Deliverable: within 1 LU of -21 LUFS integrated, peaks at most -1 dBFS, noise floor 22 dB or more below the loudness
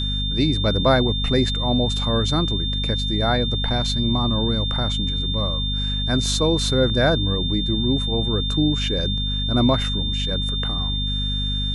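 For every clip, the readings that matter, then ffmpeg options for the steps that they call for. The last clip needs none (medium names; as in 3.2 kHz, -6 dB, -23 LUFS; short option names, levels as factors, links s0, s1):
hum 50 Hz; highest harmonic 250 Hz; hum level -22 dBFS; steady tone 3.6 kHz; tone level -25 dBFS; loudness -21.0 LUFS; peak level -4.5 dBFS; loudness target -21.0 LUFS
-> -af "bandreject=f=50:t=h:w=4,bandreject=f=100:t=h:w=4,bandreject=f=150:t=h:w=4,bandreject=f=200:t=h:w=4,bandreject=f=250:t=h:w=4"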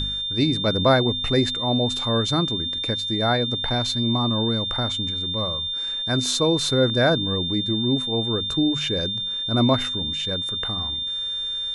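hum not found; steady tone 3.6 kHz; tone level -25 dBFS
-> -af "bandreject=f=3600:w=30"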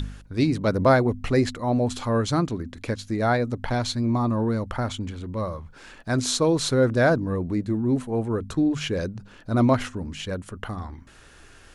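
steady tone not found; loudness -24.5 LUFS; peak level -5.5 dBFS; loudness target -21.0 LUFS
-> -af "volume=1.5"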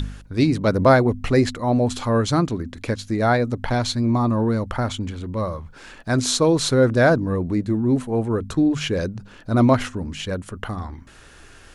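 loudness -21.0 LUFS; peak level -2.0 dBFS; noise floor -46 dBFS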